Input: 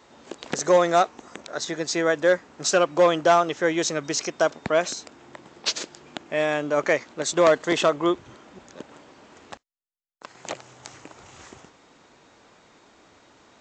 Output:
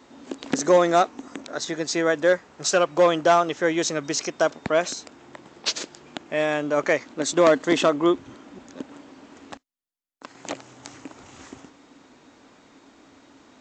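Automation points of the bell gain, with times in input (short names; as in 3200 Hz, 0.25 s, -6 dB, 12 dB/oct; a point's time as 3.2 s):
bell 270 Hz 0.4 oct
+13.5 dB
from 1.55 s +4.5 dB
from 2.33 s -5 dB
from 2.98 s +3 dB
from 7.04 s +11.5 dB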